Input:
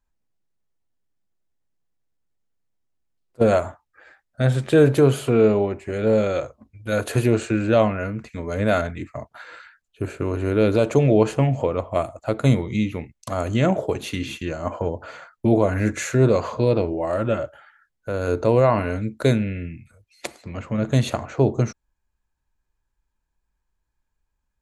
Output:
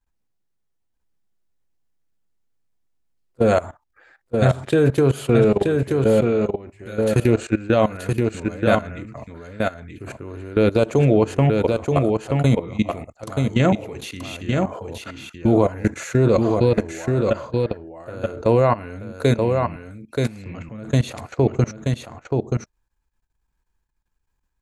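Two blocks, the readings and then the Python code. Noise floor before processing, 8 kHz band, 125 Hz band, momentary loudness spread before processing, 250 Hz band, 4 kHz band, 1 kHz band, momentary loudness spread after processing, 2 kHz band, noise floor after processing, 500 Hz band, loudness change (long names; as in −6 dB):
−77 dBFS, −1.0 dB, +1.5 dB, 16 LU, +1.5 dB, +1.0 dB, +1.5 dB, 16 LU, +0.5 dB, −73 dBFS, +1.0 dB, +1.0 dB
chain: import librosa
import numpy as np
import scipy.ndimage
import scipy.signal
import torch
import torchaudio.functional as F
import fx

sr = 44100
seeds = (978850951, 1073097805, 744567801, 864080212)

p1 = fx.level_steps(x, sr, step_db=19)
p2 = fx.notch(p1, sr, hz=610.0, q=15.0)
p3 = p2 + fx.echo_single(p2, sr, ms=929, db=-4.0, dry=0)
y = F.gain(torch.from_numpy(p3), 4.5).numpy()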